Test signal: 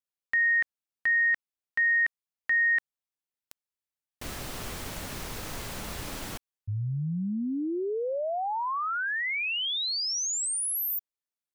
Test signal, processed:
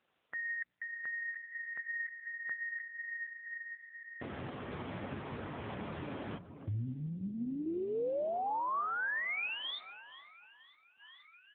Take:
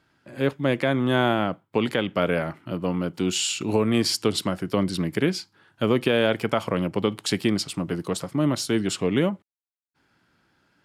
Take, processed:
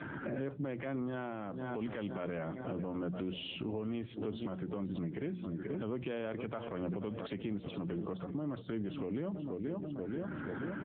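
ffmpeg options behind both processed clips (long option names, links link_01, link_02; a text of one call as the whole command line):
ffmpeg -i in.wav -filter_complex "[0:a]bandreject=frequency=60:width_type=h:width=6,bandreject=frequency=120:width_type=h:width=6,bandreject=frequency=180:width_type=h:width=6,asplit=2[link_01][link_02];[link_02]acrusher=bits=3:mode=log:mix=0:aa=0.000001,volume=-11.5dB[link_03];[link_01][link_03]amix=inputs=2:normalize=0,acompressor=mode=upward:threshold=-27dB:ratio=2.5:attack=0.2:release=778:knee=2.83:detection=peak,aecho=1:1:482|964|1446|1928|2410:0.133|0.0733|0.0403|0.0222|0.0122,acompressor=threshold=-45dB:ratio=2:attack=6.9:release=21:knee=1:detection=rms,afftdn=noise_reduction=17:noise_floor=-50,lowpass=frequency=1700:poles=1,alimiter=level_in=14.5dB:limit=-24dB:level=0:latency=1:release=378,volume=-14.5dB,volume=10dB" -ar 8000 -c:a libopencore_amrnb -b:a 6700 out.amr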